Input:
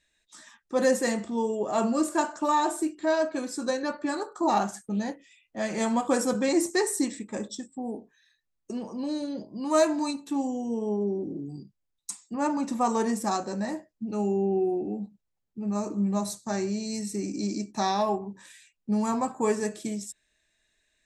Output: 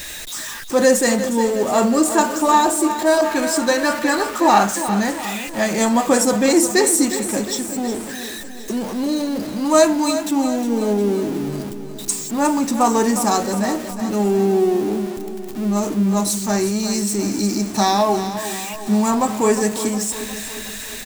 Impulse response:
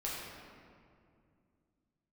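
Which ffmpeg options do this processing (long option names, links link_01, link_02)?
-filter_complex "[0:a]aeval=exprs='val(0)+0.5*0.015*sgn(val(0))':channel_layout=same,highshelf=frequency=5300:gain=6,aecho=1:1:359|718|1077|1436|1795|2154:0.282|0.155|0.0853|0.0469|0.0258|0.0142,asettb=1/sr,asplit=3[link_01][link_02][link_03];[link_01]atrim=end=3.214[link_04];[link_02]atrim=start=3.21:end=5.64,asetpts=PTS-STARTPTS,afade=type=in:duration=0.004:curve=qsin,afade=type=out:start_time=2.426:duration=0.004:curve=qsin,adynamicequalizer=threshold=0.0112:dfrequency=1800:dqfactor=0.85:tfrequency=1800:tqfactor=0.85:attack=5:release=100:ratio=0.375:range=3:mode=boostabove:tftype=bell[link_05];[link_03]atrim=start=5.636[link_06];[link_04][link_05]acrossfade=duration=0.004:curve1=hsin:curve2=qsin[link_07];[link_07][link_06]acrossfade=duration=0.004:curve1=qsin:curve2=hsin,volume=8dB"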